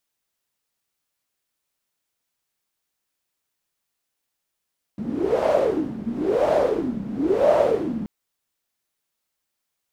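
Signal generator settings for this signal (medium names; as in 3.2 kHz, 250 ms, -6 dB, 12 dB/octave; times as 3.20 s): wind-like swept noise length 3.08 s, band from 210 Hz, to 620 Hz, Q 8.9, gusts 3, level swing 11 dB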